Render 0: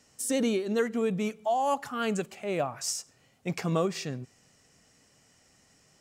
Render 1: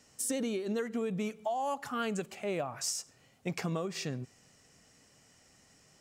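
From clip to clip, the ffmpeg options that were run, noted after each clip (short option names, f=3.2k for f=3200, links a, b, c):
-af "acompressor=threshold=-30dB:ratio=10"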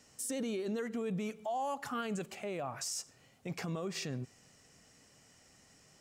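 -af "alimiter=level_in=5.5dB:limit=-24dB:level=0:latency=1:release=17,volume=-5.5dB"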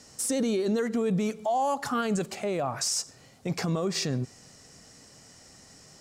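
-af "aexciter=amount=5.2:drive=1.3:freq=3.9k,aeval=exprs='0.178*(cos(1*acos(clip(val(0)/0.178,-1,1)))-cos(1*PI/2))+0.00794*(cos(5*acos(clip(val(0)/0.178,-1,1)))-cos(5*PI/2))':c=same,aemphasis=mode=reproduction:type=75fm,volume=7.5dB"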